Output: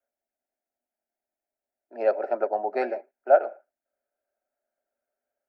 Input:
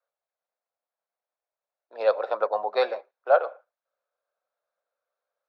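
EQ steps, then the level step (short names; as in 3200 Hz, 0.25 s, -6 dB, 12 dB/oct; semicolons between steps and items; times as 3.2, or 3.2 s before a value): bell 240 Hz +11.5 dB 0.2 oct; resonant low shelf 660 Hz +8 dB, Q 1.5; fixed phaser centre 740 Hz, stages 8; 0.0 dB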